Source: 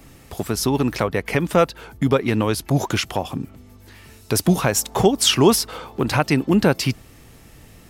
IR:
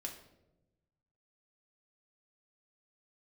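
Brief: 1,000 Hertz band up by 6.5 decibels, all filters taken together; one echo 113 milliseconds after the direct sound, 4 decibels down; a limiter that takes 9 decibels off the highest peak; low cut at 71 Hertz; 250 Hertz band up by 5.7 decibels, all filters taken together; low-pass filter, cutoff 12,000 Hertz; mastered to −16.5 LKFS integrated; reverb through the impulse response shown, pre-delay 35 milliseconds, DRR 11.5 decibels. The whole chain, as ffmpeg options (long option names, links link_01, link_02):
-filter_complex "[0:a]highpass=71,lowpass=12000,equalizer=frequency=250:width_type=o:gain=7,equalizer=frequency=1000:width_type=o:gain=8,alimiter=limit=-6dB:level=0:latency=1,aecho=1:1:113:0.631,asplit=2[link_01][link_02];[1:a]atrim=start_sample=2205,adelay=35[link_03];[link_02][link_03]afir=irnorm=-1:irlink=0,volume=-9.5dB[link_04];[link_01][link_04]amix=inputs=2:normalize=0,volume=0.5dB"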